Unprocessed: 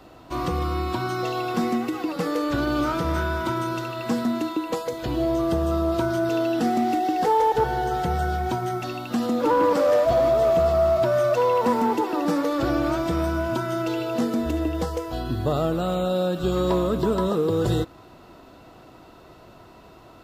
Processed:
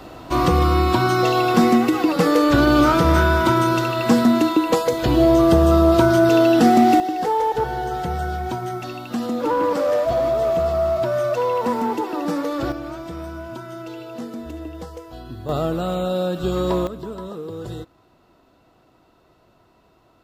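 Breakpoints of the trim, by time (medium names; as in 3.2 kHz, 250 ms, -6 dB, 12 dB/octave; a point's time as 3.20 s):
+9 dB
from 7.00 s -0.5 dB
from 12.72 s -8 dB
from 15.49 s +1 dB
from 16.87 s -9.5 dB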